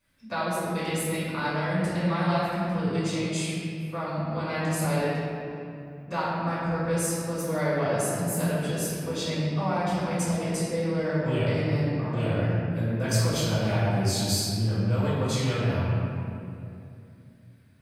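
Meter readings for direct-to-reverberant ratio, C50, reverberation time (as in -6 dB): -12.5 dB, -3.5 dB, 2.6 s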